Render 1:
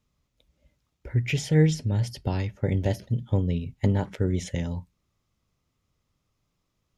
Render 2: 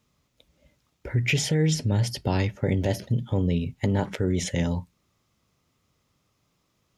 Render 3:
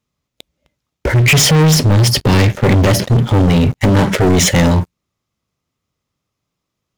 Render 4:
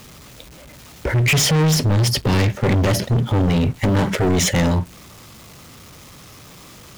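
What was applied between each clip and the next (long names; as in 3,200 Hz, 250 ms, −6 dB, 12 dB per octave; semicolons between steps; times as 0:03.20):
brickwall limiter −20.5 dBFS, peak gain reduction 11 dB; high-pass filter 130 Hz 6 dB per octave; level +7.5 dB
leveller curve on the samples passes 5; level +4 dB
converter with a step at zero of −29.5 dBFS; level −6.5 dB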